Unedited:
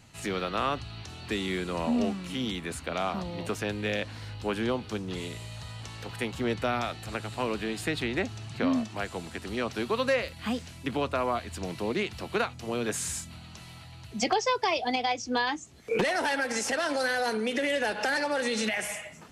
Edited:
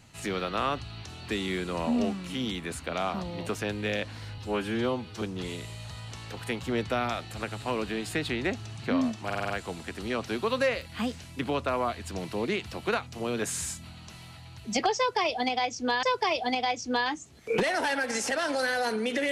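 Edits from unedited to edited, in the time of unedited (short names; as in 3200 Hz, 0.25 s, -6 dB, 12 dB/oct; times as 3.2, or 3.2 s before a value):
4.38–4.94 stretch 1.5×
8.97 stutter 0.05 s, 6 plays
14.44–15.5 loop, 2 plays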